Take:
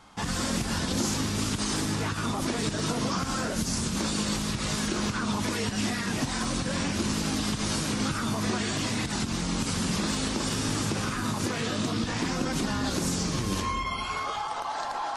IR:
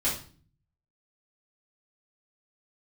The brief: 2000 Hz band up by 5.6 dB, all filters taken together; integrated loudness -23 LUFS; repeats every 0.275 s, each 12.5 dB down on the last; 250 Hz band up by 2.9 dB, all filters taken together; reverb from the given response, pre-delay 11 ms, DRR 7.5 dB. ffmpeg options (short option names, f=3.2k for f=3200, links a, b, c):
-filter_complex "[0:a]equalizer=f=250:t=o:g=3.5,equalizer=f=2k:t=o:g=7,aecho=1:1:275|550|825:0.237|0.0569|0.0137,asplit=2[a][b];[1:a]atrim=start_sample=2205,adelay=11[c];[b][c]afir=irnorm=-1:irlink=0,volume=-16.5dB[d];[a][d]amix=inputs=2:normalize=0,volume=2.5dB"